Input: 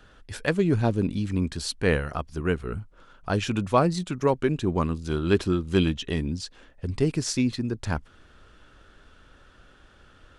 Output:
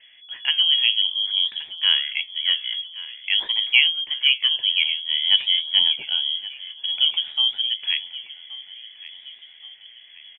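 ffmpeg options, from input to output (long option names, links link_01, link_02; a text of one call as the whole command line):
ffmpeg -i in.wav -filter_complex "[0:a]highshelf=frequency=1600:width_type=q:width=1.5:gain=-8.5,lowpass=frequency=2900:width_type=q:width=0.5098,lowpass=frequency=2900:width_type=q:width=0.6013,lowpass=frequency=2900:width_type=q:width=0.9,lowpass=frequency=2900:width_type=q:width=2.563,afreqshift=-3400,equalizer=frequency=63:width_type=o:width=1.2:gain=-5.5,asplit=2[link_01][link_02];[link_02]aecho=0:1:1124|2248|3372|4496:0.141|0.072|0.0367|0.0187[link_03];[link_01][link_03]amix=inputs=2:normalize=0,flanger=delay=6.3:depth=7.1:regen=76:speed=0.51:shape=sinusoidal,volume=7.5dB" -ar 44100 -c:a aac -b:a 160k out.aac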